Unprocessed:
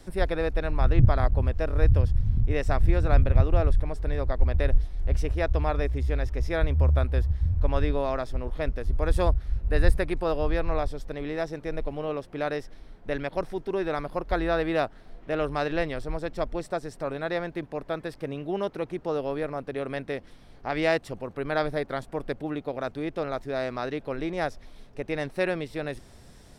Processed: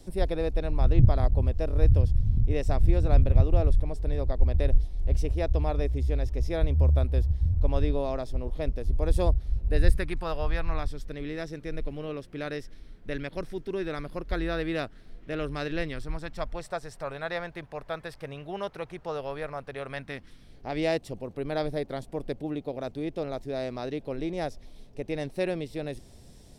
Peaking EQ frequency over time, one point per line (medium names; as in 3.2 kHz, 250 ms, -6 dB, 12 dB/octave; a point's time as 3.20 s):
peaking EQ -11 dB 1.4 oct
9.64 s 1.5 kHz
10.40 s 310 Hz
11.09 s 820 Hz
15.83 s 820 Hz
16.59 s 290 Hz
19.86 s 290 Hz
20.71 s 1.4 kHz